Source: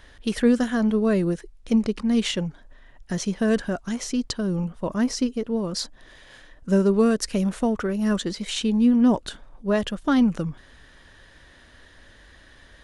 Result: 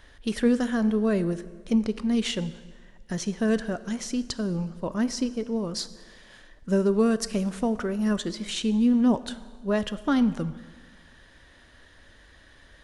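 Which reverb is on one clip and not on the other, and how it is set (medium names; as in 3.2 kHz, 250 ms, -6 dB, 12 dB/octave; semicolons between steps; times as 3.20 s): plate-style reverb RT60 1.6 s, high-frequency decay 0.85×, DRR 14 dB; trim -3 dB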